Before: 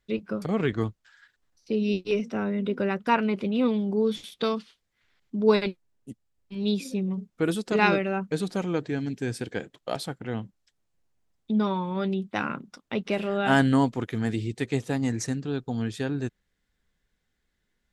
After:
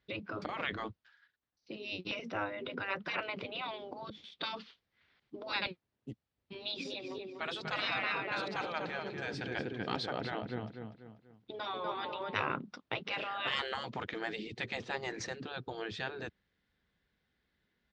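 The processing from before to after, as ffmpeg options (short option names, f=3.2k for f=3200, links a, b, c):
-filter_complex "[0:a]asplit=3[a][b][c];[a]afade=t=out:st=6.85:d=0.02[d];[b]asplit=2[e][f];[f]adelay=244,lowpass=f=4.6k:p=1,volume=-6.5dB,asplit=2[g][h];[h]adelay=244,lowpass=f=4.6k:p=1,volume=0.41,asplit=2[i][j];[j]adelay=244,lowpass=f=4.6k:p=1,volume=0.41,asplit=2[k][l];[l]adelay=244,lowpass=f=4.6k:p=1,volume=0.41,asplit=2[m][n];[n]adelay=244,lowpass=f=4.6k:p=1,volume=0.41[o];[e][g][i][k][m][o]amix=inputs=6:normalize=0,afade=t=in:st=6.85:d=0.02,afade=t=out:st=12.55:d=0.02[p];[c]afade=t=in:st=12.55:d=0.02[q];[d][p][q]amix=inputs=3:normalize=0,asplit=4[r][s][t][u];[r]atrim=end=1.2,asetpts=PTS-STARTPTS,afade=t=out:st=0.77:d=0.43:silence=0.281838[v];[s]atrim=start=1.2:end=1.6,asetpts=PTS-STARTPTS,volume=-11dB[w];[t]atrim=start=1.6:end=4.1,asetpts=PTS-STARTPTS,afade=t=in:d=0.43:silence=0.281838,afade=t=out:st=2.496:d=0.004:c=hsin:silence=0.0707946[x];[u]atrim=start=4.1,asetpts=PTS-STARTPTS,afade=t=in:d=0.47:silence=0.0707946[y];[v][w][x][y]concat=n=4:v=0:a=1,lowpass=f=4.7k:w=0.5412,lowpass=f=4.7k:w=1.3066,afftfilt=real='re*lt(hypot(re,im),0.126)':imag='im*lt(hypot(re,im),0.126)':win_size=1024:overlap=0.75,highpass=66"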